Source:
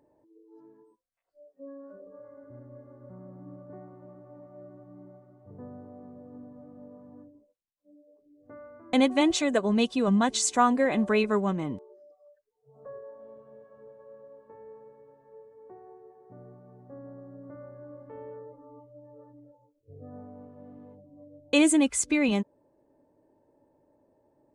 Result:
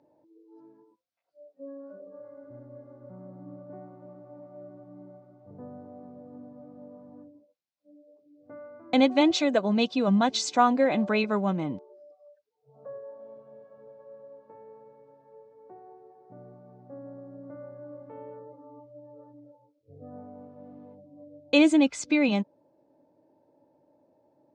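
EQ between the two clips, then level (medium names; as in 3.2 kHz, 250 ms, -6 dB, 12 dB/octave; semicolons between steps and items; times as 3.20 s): cabinet simulation 150–5300 Hz, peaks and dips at 230 Hz -4 dB, 410 Hz -8 dB, 1.1 kHz -6 dB, 1.8 kHz -8 dB, 3 kHz -4 dB; +4.0 dB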